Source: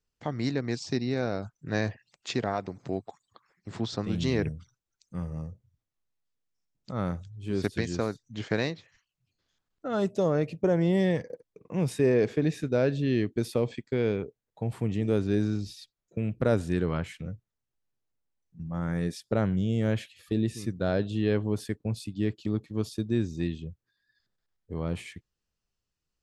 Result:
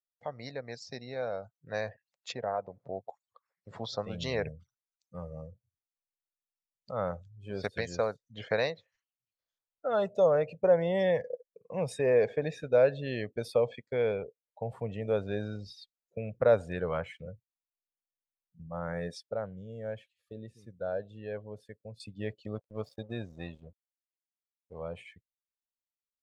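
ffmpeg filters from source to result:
-filter_complex "[0:a]asettb=1/sr,asplit=3[s0][s1][s2];[s0]atrim=end=2.324[s3];[s1]atrim=start=2.32:end=3.08,asetpts=PTS-STARTPTS,afade=t=in:d=0.004:c=qsin,afade=t=out:st=0.756:d=0.004:c=qsin,lowpass=f=1400:p=1[s4];[s2]atrim=start=3.076[s5];[s3][s4]acrossfade=d=0.004:c1=hsin:c2=qsin[s6];[s6][s5]acrossfade=d=0.004:c1=qsin:c2=hsin,asettb=1/sr,asplit=3[s7][s8][s9];[s7]atrim=end=22.554[s10];[s8]atrim=start=22.55:end=24.81,asetpts=PTS-STARTPTS,afade=t=in:d=0.004:c=qsin,afade=t=out:st=2.256:d=0.004:c=qsin,aeval=exprs='sgn(val(0))*max(abs(val(0))-0.00501,0)':c=same[s11];[s9]atrim=start=24.806[s12];[s10][s11]acrossfade=d=0.004:c1=hsin:c2=qsin[s13];[s13][s12]acrossfade=d=0.004:c1=qsin:c2=hsin,asplit=3[s14][s15][s16];[s14]atrim=end=19.232[s17];[s15]atrim=start=19.228:end=22.002,asetpts=PTS-STARTPTS,volume=0.376[s18];[s16]atrim=start=21.998[s19];[s17][s18]acrossfade=d=0.004:c1=hsin:c2=hsin[s20];[s20][s19]acrossfade=d=0.004:c1=hsin:c2=hsin,afftdn=nr=17:nf=-45,lowshelf=f=420:t=q:w=3:g=-7.5,dynaudnorm=f=540:g=11:m=2,volume=0.473"

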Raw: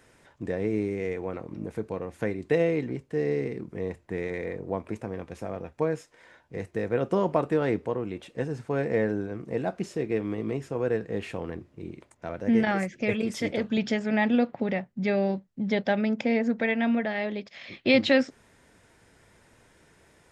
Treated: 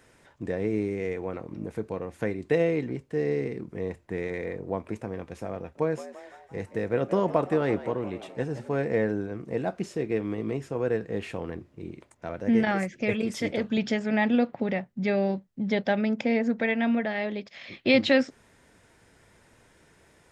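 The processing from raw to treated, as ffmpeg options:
-filter_complex "[0:a]asettb=1/sr,asplit=3[s0][s1][s2];[s0]atrim=end=5.584[s3];[s1]atrim=start=5.58:end=8.77,asetpts=PTS-STARTPTS,afade=t=in:d=0.004:c=qsin,afade=t=out:st=3.186:d=0.004:c=qsin,asplit=6[s4][s5][s6][s7][s8][s9];[s5]adelay=171,afreqshift=87,volume=0.188[s10];[s6]adelay=342,afreqshift=174,volume=0.1[s11];[s7]adelay=513,afreqshift=261,volume=0.0531[s12];[s8]adelay=684,afreqshift=348,volume=0.0282[s13];[s9]adelay=855,afreqshift=435,volume=0.0148[s14];[s4][s10][s11][s12][s13][s14]amix=inputs=6:normalize=0,atrim=end_sample=140679[s15];[s2]atrim=start=8.766[s16];[s3][s15]acrossfade=d=0.004:c1=hsin:c2=qsin[s17];[s17][s16]acrossfade=d=0.004:c1=qsin:c2=hsin"

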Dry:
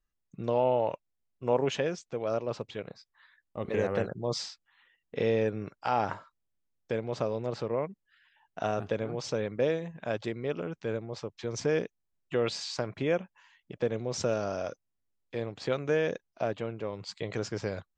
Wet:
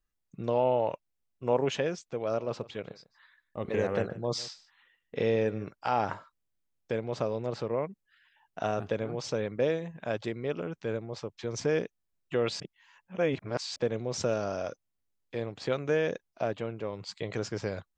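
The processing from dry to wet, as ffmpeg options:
-filter_complex "[0:a]asettb=1/sr,asplit=3[s0][s1][s2];[s0]atrim=end=2.204[s3];[s1]atrim=start=2.2:end=5.71,asetpts=PTS-STARTPTS,afade=t=in:d=0.004:c=qsin,afade=t=out:st=3.506:d=0.004:c=qsin,aecho=1:1:149:0.112,atrim=end_sample=154791[s4];[s2]atrim=start=5.706[s5];[s3][s4]acrossfade=d=0.004:c1=hsin:c2=qsin[s6];[s6][s5]acrossfade=d=0.004:c1=qsin:c2=hsin,asplit=3[s7][s8][s9];[s7]atrim=end=12.602[s10];[s8]atrim=start=12.598:end=13.762,asetpts=PTS-STARTPTS,areverse[s11];[s9]atrim=start=13.758[s12];[s10][s11]acrossfade=d=0.004:c1=hsin:c2=hsin[s13];[s13][s12]acrossfade=d=0.004:c1=hsin:c2=hsin"

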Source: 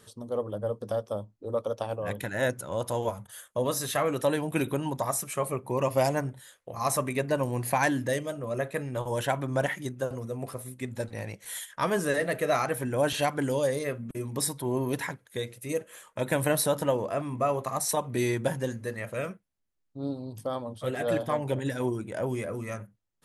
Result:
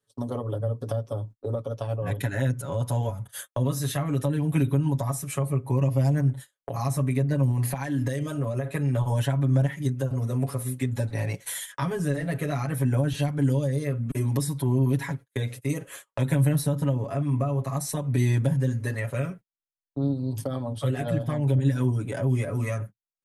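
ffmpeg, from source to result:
-filter_complex "[0:a]asettb=1/sr,asplit=3[s0][s1][s2];[s0]atrim=end=7.514[s3];[s1]atrim=start=7.51:end=8.68,asetpts=PTS-STARTPTS,afade=t=in:d=0.004:c=qsin,afade=t=out:st=1.166:d=0.004:c=qsin,acompressor=threshold=0.0316:ratio=6:attack=3.2:release=140:knee=1:detection=peak[s4];[s2]atrim=start=8.676[s5];[s3][s4]acrossfade=d=0.004:c1=hsin:c2=qsin[s6];[s6][s5]acrossfade=d=0.004:c1=qsin:c2=hsin,asettb=1/sr,asplit=3[s7][s8][s9];[s7]atrim=end=15.234[s10];[s8]atrim=start=15.23:end=15.69,asetpts=PTS-STARTPTS,afade=t=in:d=0.004:c=qsin,afade=t=out:st=0.456:d=0.004:c=qsin,acrossover=split=2700[s11][s12];[s12]acompressor=threshold=0.00501:ratio=4:attack=1:release=60[s13];[s11][s13]amix=inputs=2:normalize=0[s14];[s9]atrim=start=15.686[s15];[s10][s14]acrossfade=d=0.004:c1=hsin:c2=qsin[s16];[s16][s15]acrossfade=d=0.004:c1=qsin:c2=hsin,agate=range=0.0158:threshold=0.00562:ratio=16:detection=peak,aecho=1:1:7.2:1,acrossover=split=210[s17][s18];[s18]acompressor=threshold=0.0126:ratio=10[s19];[s17][s19]amix=inputs=2:normalize=0,volume=2.37"

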